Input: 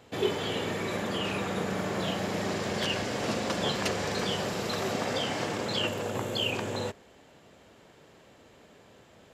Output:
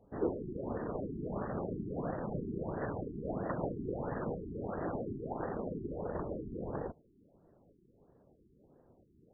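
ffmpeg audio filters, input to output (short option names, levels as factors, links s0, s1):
-af "afftfilt=real='hypot(re,im)*cos(2*PI*random(0))':imag='hypot(re,im)*sin(2*PI*random(1))':win_size=512:overlap=0.75,adynamicsmooth=sensitivity=5.5:basefreq=650,afftfilt=real='re*lt(b*sr/1024,410*pow(2000/410,0.5+0.5*sin(2*PI*1.5*pts/sr)))':imag='im*lt(b*sr/1024,410*pow(2000/410,0.5+0.5*sin(2*PI*1.5*pts/sr)))':win_size=1024:overlap=0.75,volume=1.12"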